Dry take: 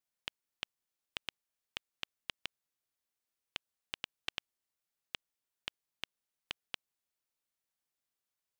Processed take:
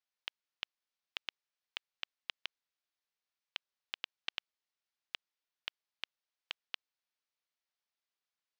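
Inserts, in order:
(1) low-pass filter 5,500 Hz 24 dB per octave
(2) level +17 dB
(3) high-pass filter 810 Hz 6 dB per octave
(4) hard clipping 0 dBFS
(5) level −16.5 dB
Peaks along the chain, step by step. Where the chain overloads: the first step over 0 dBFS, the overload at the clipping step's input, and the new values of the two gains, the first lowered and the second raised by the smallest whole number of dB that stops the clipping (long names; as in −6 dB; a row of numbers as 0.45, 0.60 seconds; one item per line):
−17.5, −0.5, −1.5, −1.5, −18.0 dBFS
no step passes full scale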